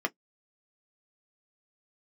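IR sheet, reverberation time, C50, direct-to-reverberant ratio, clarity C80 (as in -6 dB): no single decay rate, 37.0 dB, 4.5 dB, 59.0 dB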